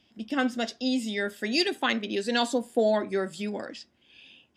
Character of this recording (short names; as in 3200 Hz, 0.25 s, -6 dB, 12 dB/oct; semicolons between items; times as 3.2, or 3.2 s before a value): noise floor -67 dBFS; spectral tilt -2.0 dB/oct